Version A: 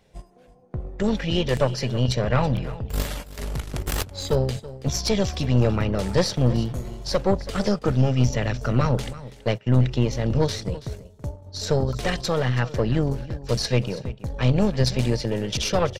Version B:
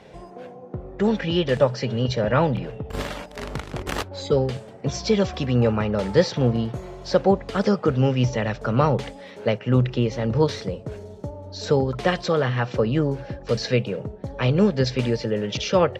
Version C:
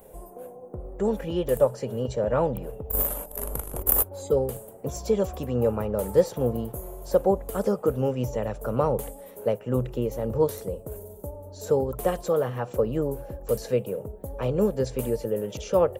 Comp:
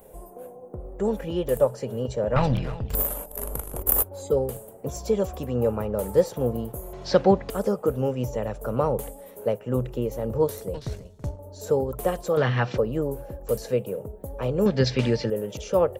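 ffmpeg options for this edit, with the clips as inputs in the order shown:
-filter_complex "[0:a]asplit=2[a][b];[1:a]asplit=3[c][d][e];[2:a]asplit=6[f][g][h][i][j][k];[f]atrim=end=2.362[l];[a]atrim=start=2.358:end=2.952[m];[g]atrim=start=2.948:end=6.932[n];[c]atrim=start=6.928:end=7.502[o];[h]atrim=start=7.498:end=10.742[p];[b]atrim=start=10.738:end=11.392[q];[i]atrim=start=11.388:end=12.372[r];[d]atrim=start=12.368:end=12.782[s];[j]atrim=start=12.778:end=14.662[t];[e]atrim=start=14.658:end=15.302[u];[k]atrim=start=15.298[v];[l][m]acrossfade=d=0.004:c1=hsin:c2=hsin[w];[w][n]acrossfade=d=0.004:c1=hsin:c2=hsin[x];[x][o]acrossfade=d=0.004:c1=hsin:c2=hsin[y];[y][p]acrossfade=d=0.004:c1=hsin:c2=hsin[z];[z][q]acrossfade=d=0.004:c1=hsin:c2=hsin[aa];[aa][r]acrossfade=d=0.004:c1=hsin:c2=hsin[ab];[ab][s]acrossfade=d=0.004:c1=hsin:c2=hsin[ac];[ac][t]acrossfade=d=0.004:c1=hsin:c2=hsin[ad];[ad][u]acrossfade=d=0.004:c1=hsin:c2=hsin[ae];[ae][v]acrossfade=d=0.004:c1=hsin:c2=hsin"

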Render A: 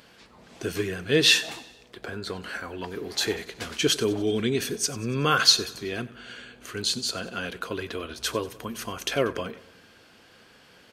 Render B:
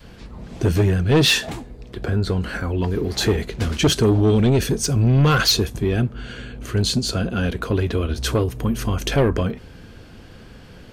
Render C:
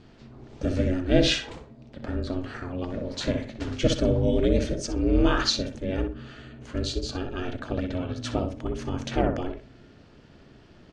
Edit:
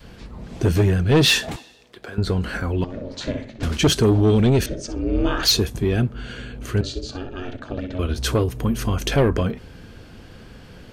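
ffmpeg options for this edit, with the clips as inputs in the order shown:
-filter_complex "[2:a]asplit=3[a][b][c];[1:a]asplit=5[d][e][f][g][h];[d]atrim=end=1.562[i];[0:a]atrim=start=1.558:end=2.182[j];[e]atrim=start=2.178:end=2.842[k];[a]atrim=start=2.838:end=3.632[l];[f]atrim=start=3.628:end=4.662[m];[b]atrim=start=4.658:end=5.432[n];[g]atrim=start=5.428:end=6.812[o];[c]atrim=start=6.808:end=7.992[p];[h]atrim=start=7.988[q];[i][j]acrossfade=d=0.004:c1=hsin:c2=hsin[r];[r][k]acrossfade=d=0.004:c1=hsin:c2=hsin[s];[s][l]acrossfade=d=0.004:c1=hsin:c2=hsin[t];[t][m]acrossfade=d=0.004:c1=hsin:c2=hsin[u];[u][n]acrossfade=d=0.004:c1=hsin:c2=hsin[v];[v][o]acrossfade=d=0.004:c1=hsin:c2=hsin[w];[w][p]acrossfade=d=0.004:c1=hsin:c2=hsin[x];[x][q]acrossfade=d=0.004:c1=hsin:c2=hsin"

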